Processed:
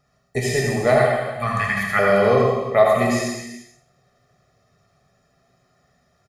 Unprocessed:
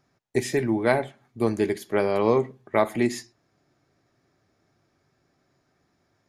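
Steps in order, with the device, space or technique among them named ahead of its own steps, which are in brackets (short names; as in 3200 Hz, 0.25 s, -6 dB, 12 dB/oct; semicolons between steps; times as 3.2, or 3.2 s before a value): 0.98–1.99 EQ curve 200 Hz 0 dB, 380 Hz -28 dB, 690 Hz -1 dB, 1600 Hz +14 dB, 4100 Hz -2 dB; microphone above a desk (comb 1.6 ms, depth 83%; reverb RT60 0.50 s, pre-delay 70 ms, DRR 1.5 dB); non-linear reverb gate 0.47 s falling, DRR 1.5 dB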